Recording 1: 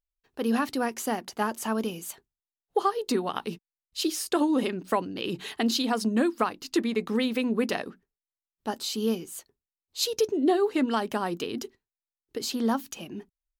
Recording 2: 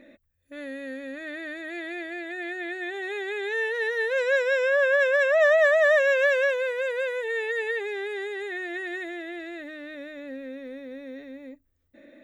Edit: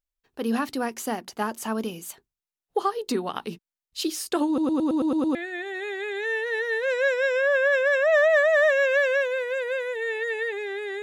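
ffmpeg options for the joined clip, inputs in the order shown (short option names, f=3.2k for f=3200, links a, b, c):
-filter_complex "[0:a]apad=whole_dur=11.02,atrim=end=11.02,asplit=8[a][b][c][d][e][f][g][h];[a]atrim=end=4.582[i];[b]atrim=start=4.468:end=4.582[j];[c]atrim=start=4.468:end=4.582[k];[d]atrim=start=4.468:end=4.582[l];[e]atrim=start=4.468:end=4.582[m];[f]atrim=start=4.468:end=4.582[n];[g]atrim=start=4.468:end=4.582[o];[h]atrim=start=4.468:end=4.582[p];[1:a]atrim=start=2.628:end=8.3[q];[i][j]acrossfade=d=0.004:c1=hsin:c2=hsin[r];[r][k]acrossfade=d=0.004:c1=hsin:c2=hsin[s];[s][l]acrossfade=d=0.004:c1=hsin:c2=hsin[t];[t][m]acrossfade=d=0.004:c1=hsin:c2=hsin[u];[u][n]acrossfade=d=0.004:c1=hsin:c2=hsin[v];[v][o]acrossfade=d=0.004:c1=hsin:c2=hsin[w];[w][p]acrossfade=d=0.004:c1=hsin:c2=hsin[x];[x][q]acrossfade=d=0.004:c1=hsin:c2=hsin"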